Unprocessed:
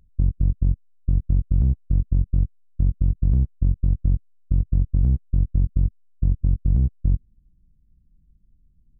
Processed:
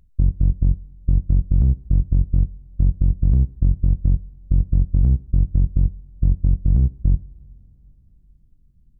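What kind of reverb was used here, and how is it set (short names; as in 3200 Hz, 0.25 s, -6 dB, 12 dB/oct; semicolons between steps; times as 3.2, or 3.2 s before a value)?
two-slope reverb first 0.47 s, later 4.7 s, from -18 dB, DRR 16.5 dB; gain +2.5 dB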